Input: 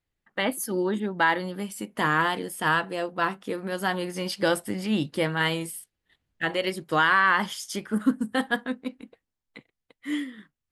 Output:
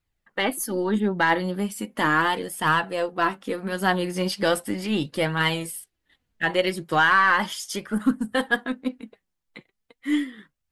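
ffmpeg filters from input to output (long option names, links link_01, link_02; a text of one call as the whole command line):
ffmpeg -i in.wav -af "acontrast=75,aeval=exprs='0.631*(cos(1*acos(clip(val(0)/0.631,-1,1)))-cos(1*PI/2))+0.00398*(cos(8*acos(clip(val(0)/0.631,-1,1)))-cos(8*PI/2))':channel_layout=same,flanger=delay=0.7:depth=5.4:regen=49:speed=0.37:shape=triangular" out.wav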